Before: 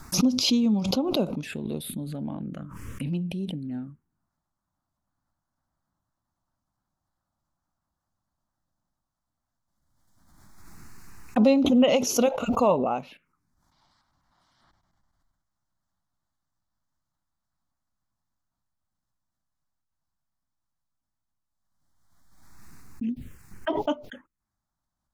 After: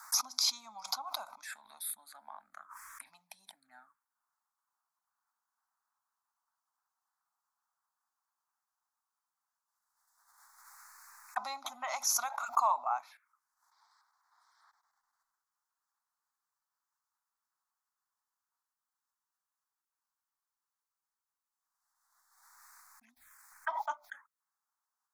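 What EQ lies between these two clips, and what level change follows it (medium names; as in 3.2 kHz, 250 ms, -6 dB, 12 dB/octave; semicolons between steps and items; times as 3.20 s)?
inverse Chebyshev high-pass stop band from 390 Hz, stop band 40 dB; static phaser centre 1.2 kHz, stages 4; +1.0 dB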